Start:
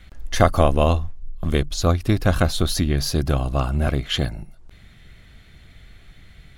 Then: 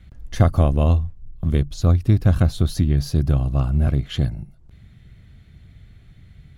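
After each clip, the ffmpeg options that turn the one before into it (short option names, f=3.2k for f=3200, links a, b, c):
-af "equalizer=f=110:t=o:w=2.8:g=14.5,volume=-9dB"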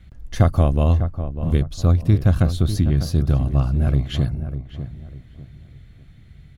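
-filter_complex "[0:a]asplit=2[a][b];[b]adelay=598,lowpass=f=1.4k:p=1,volume=-10dB,asplit=2[c][d];[d]adelay=598,lowpass=f=1.4k:p=1,volume=0.32,asplit=2[e][f];[f]adelay=598,lowpass=f=1.4k:p=1,volume=0.32,asplit=2[g][h];[h]adelay=598,lowpass=f=1.4k:p=1,volume=0.32[i];[a][c][e][g][i]amix=inputs=5:normalize=0"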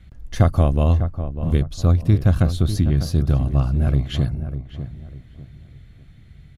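-af "aresample=32000,aresample=44100"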